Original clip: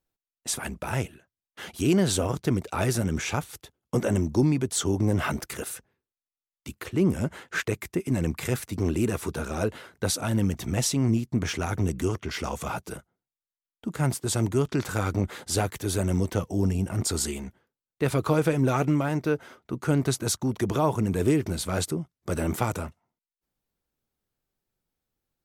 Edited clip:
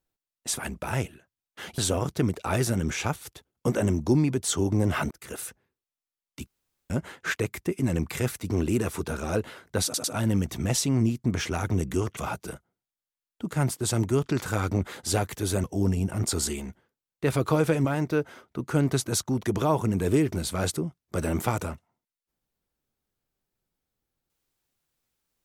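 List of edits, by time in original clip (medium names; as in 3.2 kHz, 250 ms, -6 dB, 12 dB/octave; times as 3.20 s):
1.78–2.06 s: delete
5.39–5.71 s: fade in
6.75–7.18 s: room tone
10.12 s: stutter 0.10 s, 3 plays
12.25–12.60 s: delete
16.07–16.42 s: delete
18.63–18.99 s: delete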